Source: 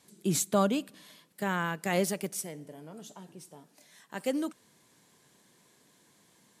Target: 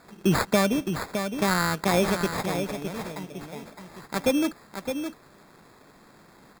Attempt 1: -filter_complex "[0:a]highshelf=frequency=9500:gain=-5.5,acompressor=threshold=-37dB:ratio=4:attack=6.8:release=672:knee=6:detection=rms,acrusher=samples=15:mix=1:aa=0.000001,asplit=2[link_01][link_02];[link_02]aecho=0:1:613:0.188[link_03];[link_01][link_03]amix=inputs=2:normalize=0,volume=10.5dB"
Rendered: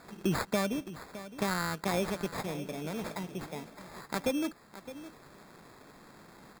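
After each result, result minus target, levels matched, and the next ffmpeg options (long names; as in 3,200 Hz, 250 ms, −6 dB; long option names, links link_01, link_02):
downward compressor: peak gain reduction +8.5 dB; echo-to-direct −7 dB
-filter_complex "[0:a]highshelf=frequency=9500:gain=-5.5,acompressor=threshold=-25.5dB:ratio=4:attack=6.8:release=672:knee=6:detection=rms,acrusher=samples=15:mix=1:aa=0.000001,asplit=2[link_01][link_02];[link_02]aecho=0:1:613:0.188[link_03];[link_01][link_03]amix=inputs=2:normalize=0,volume=10.5dB"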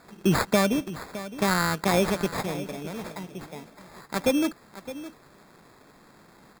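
echo-to-direct −7 dB
-filter_complex "[0:a]highshelf=frequency=9500:gain=-5.5,acompressor=threshold=-25.5dB:ratio=4:attack=6.8:release=672:knee=6:detection=rms,acrusher=samples=15:mix=1:aa=0.000001,asplit=2[link_01][link_02];[link_02]aecho=0:1:613:0.422[link_03];[link_01][link_03]amix=inputs=2:normalize=0,volume=10.5dB"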